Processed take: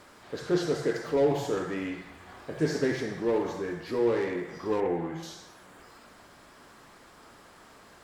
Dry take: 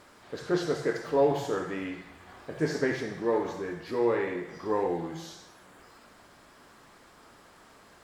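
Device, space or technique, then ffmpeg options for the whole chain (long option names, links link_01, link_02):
one-band saturation: -filter_complex "[0:a]acrossover=split=530|4000[link_01][link_02][link_03];[link_02]asoftclip=type=tanh:threshold=-35.5dB[link_04];[link_01][link_04][link_03]amix=inputs=3:normalize=0,asettb=1/sr,asplit=3[link_05][link_06][link_07];[link_05]atrim=end=4.804[link_08];[link_06]atrim=start=4.8:end=5.23,asetpts=PTS-STARTPTS,afade=type=in:duration=0.004:curve=qsin,afade=type=out:start_time=0.426:duration=0.004:curve=qsin,highshelf=frequency=3100:width_type=q:width=1.5:gain=-8.5[link_09];[link_07]atrim=start=5.226[link_10];[link_08][link_09]acrossfade=duration=0.004:curve1=hsin:curve2=qsin[link_11];[link_11][link_10]acrossfade=duration=0.004:curve1=qsin:curve2=hsin,volume=2dB"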